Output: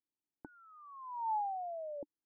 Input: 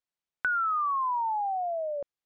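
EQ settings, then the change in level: vocal tract filter u; bell 1900 Hz -5.5 dB 2.3 oct; +9.5 dB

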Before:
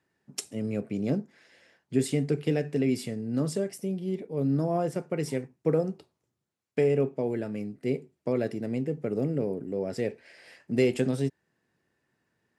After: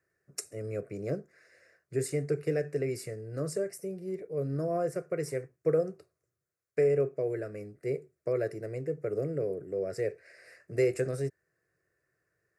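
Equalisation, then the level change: fixed phaser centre 880 Hz, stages 6; 0.0 dB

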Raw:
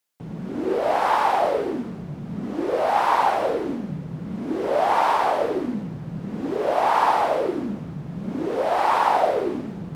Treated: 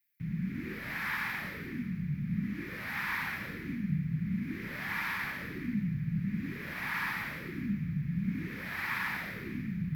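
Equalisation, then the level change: EQ curve 190 Hz 0 dB, 410 Hz -25 dB, 1000 Hz -19 dB, 1600 Hz -18 dB, 2400 Hz +15 dB, 5000 Hz +3 dB, 9000 Hz -14 dB, 13000 Hz -4 dB; dynamic EQ 2300 Hz, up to -5 dB, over -39 dBFS, Q 2.4; EQ curve 390 Hz 0 dB, 700 Hz -15 dB, 1700 Hz +15 dB, 2800 Hz -21 dB, 8000 Hz -4 dB, 12000 Hz +8 dB; 0.0 dB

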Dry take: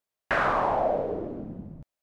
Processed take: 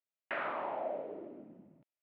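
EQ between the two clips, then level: speaker cabinet 370–2900 Hz, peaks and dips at 470 Hz -8 dB, 760 Hz -7 dB, 1100 Hz -8 dB, 1600 Hz -7 dB; -6.5 dB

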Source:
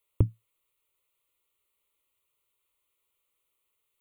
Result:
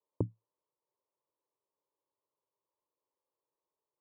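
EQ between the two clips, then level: HPF 140 Hz; steep low-pass 1000 Hz 48 dB/oct; tilt +2 dB/oct; +1.5 dB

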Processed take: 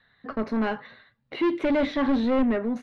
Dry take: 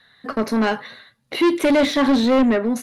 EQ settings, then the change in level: LPF 2900 Hz 12 dB/oct; low shelf 100 Hz +8.5 dB; -7.5 dB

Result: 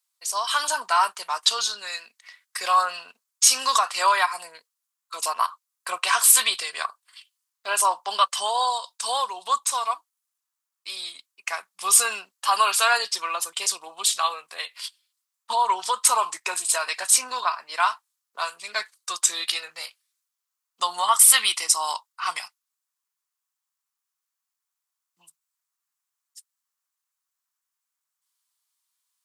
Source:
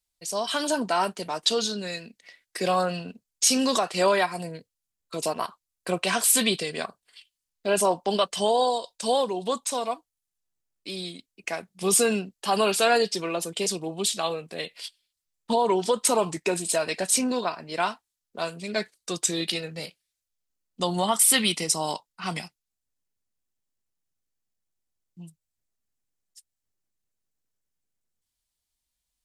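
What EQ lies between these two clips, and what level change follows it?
resonant high-pass 1100 Hz, resonance Q 3.5; high shelf 4200 Hz +7.5 dB; -1.0 dB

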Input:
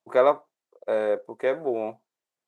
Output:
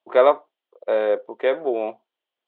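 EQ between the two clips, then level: HPF 300 Hz 12 dB/oct; synth low-pass 3200 Hz, resonance Q 5.7; high shelf 2200 Hz -11 dB; +5.0 dB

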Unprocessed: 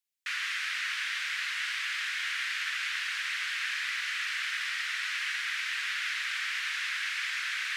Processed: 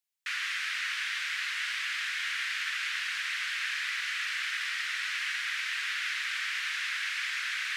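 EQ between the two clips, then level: HPF 640 Hz; 0.0 dB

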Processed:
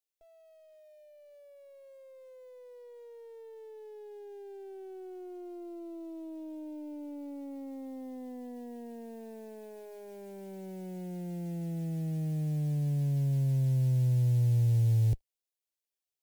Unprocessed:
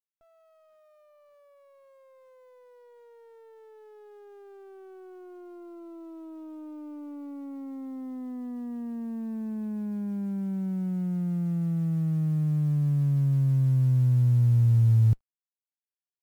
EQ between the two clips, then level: bell 90 Hz -13.5 dB 0.53 oct; fixed phaser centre 500 Hz, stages 4; +4.0 dB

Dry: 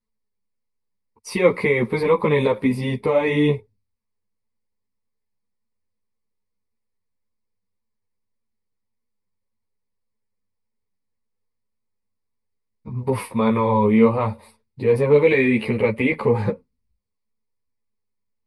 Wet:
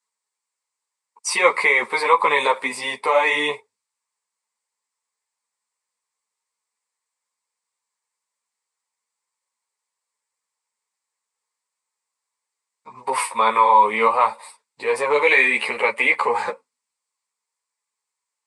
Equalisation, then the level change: resonant high-pass 950 Hz, resonance Q 1.5; synth low-pass 7900 Hz, resonance Q 4.5; +6.0 dB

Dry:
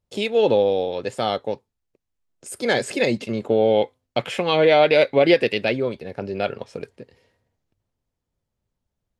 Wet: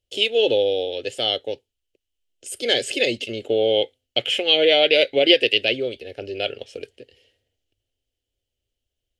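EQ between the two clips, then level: bell 3000 Hz +15 dB 0.34 oct; bell 6400 Hz +3.5 dB 2.5 oct; fixed phaser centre 430 Hz, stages 4; -1.0 dB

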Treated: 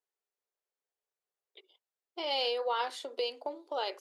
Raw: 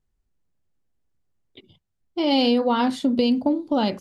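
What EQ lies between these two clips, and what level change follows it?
elliptic high-pass 410 Hz, stop band 50 dB; dynamic EQ 620 Hz, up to -4 dB, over -33 dBFS, Q 0.96; -6.0 dB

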